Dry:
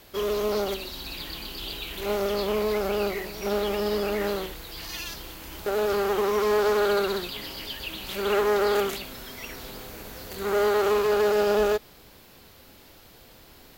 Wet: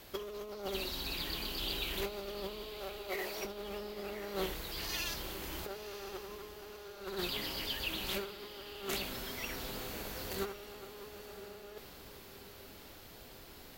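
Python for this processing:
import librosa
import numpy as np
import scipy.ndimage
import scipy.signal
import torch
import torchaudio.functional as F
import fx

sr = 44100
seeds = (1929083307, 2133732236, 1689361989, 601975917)

p1 = fx.over_compress(x, sr, threshold_db=-31.0, ratio=-0.5)
p2 = fx.cheby1_highpass(p1, sr, hz=470.0, order=2, at=(2.63, 3.45))
p3 = p2 + fx.echo_diffused(p2, sr, ms=1005, feedback_pct=50, wet_db=-12, dry=0)
y = p3 * librosa.db_to_amplitude(-8.5)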